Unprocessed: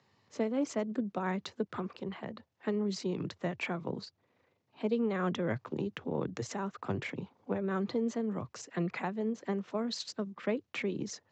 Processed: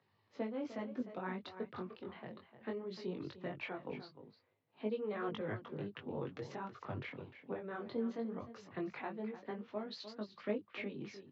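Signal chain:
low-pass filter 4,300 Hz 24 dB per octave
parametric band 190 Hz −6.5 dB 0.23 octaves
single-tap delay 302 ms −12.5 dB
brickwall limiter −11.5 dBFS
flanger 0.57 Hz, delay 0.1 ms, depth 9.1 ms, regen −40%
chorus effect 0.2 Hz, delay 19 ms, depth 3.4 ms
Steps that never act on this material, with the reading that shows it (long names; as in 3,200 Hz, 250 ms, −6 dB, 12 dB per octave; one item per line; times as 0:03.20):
brickwall limiter −11.5 dBFS: peak of its input −20.0 dBFS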